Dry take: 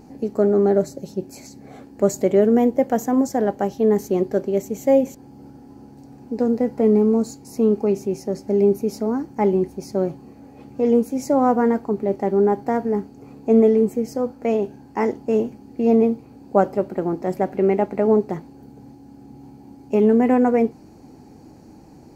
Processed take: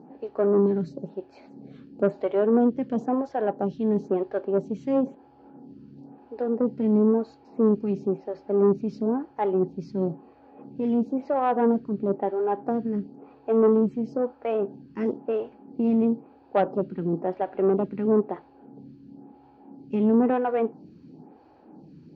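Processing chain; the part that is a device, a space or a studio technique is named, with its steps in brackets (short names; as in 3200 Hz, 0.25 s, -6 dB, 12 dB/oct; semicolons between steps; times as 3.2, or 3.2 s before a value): vibe pedal into a guitar amplifier (photocell phaser 0.99 Hz; tube stage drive 13 dB, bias 0.35; speaker cabinet 100–3700 Hz, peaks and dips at 110 Hz -8 dB, 160 Hz +6 dB, 2100 Hz -8 dB)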